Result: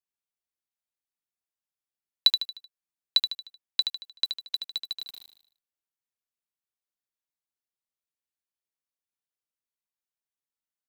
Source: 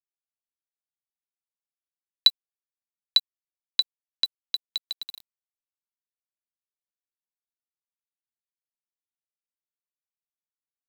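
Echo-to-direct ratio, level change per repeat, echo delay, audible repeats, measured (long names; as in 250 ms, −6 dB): −6.0 dB, −7.0 dB, 76 ms, 5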